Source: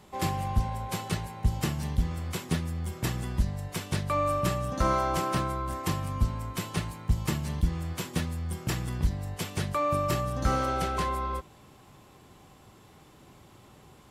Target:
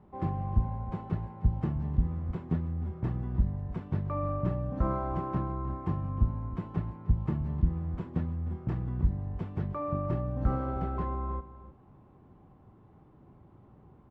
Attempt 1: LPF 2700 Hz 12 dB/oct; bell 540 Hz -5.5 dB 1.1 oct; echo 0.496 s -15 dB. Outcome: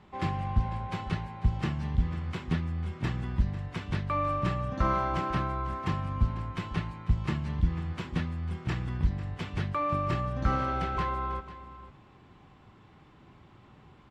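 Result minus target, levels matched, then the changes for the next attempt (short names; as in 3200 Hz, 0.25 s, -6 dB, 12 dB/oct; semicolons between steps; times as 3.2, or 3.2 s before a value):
2000 Hz band +12.5 dB; echo 0.189 s late
change: LPF 780 Hz 12 dB/oct; change: echo 0.307 s -15 dB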